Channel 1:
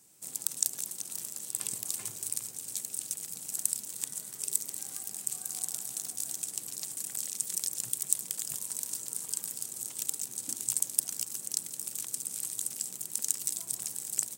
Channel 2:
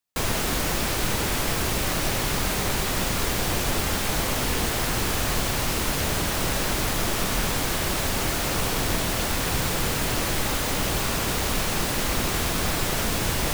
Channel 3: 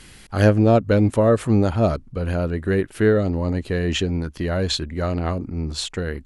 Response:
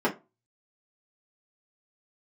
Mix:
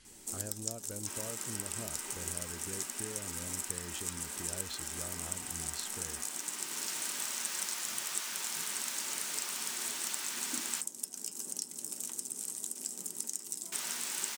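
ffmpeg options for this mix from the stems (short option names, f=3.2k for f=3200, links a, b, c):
-filter_complex "[0:a]acompressor=threshold=-41dB:ratio=5,adelay=50,volume=-2.5dB,asplit=2[a][b];[b]volume=-4.5dB[c];[1:a]highpass=1.4k,adelay=900,volume=-16dB,asplit=3[d][e][f];[d]atrim=end=10.81,asetpts=PTS-STARTPTS,afade=t=out:st=10.806:d=0.004:c=hsin[g];[e]atrim=start=10.81:end=13.72,asetpts=PTS-STARTPTS,volume=0[h];[f]atrim=start=13.72,asetpts=PTS-STARTPTS,afade=t=in:d=0.004:c=hsin[i];[g][h][i]concat=n=3:v=0:a=1,asplit=2[j][k];[k]volume=-13.5dB[l];[2:a]acompressor=threshold=-27dB:ratio=3,volume=-18.5dB,asplit=2[m][n];[n]apad=whole_len=636407[o];[j][o]sidechaincompress=threshold=-58dB:ratio=8:attack=16:release=773[p];[3:a]atrim=start_sample=2205[q];[c][l]amix=inputs=2:normalize=0[r];[r][q]afir=irnorm=-1:irlink=0[s];[a][p][m][s]amix=inputs=4:normalize=0,equalizer=f=6.5k:w=0.91:g=8"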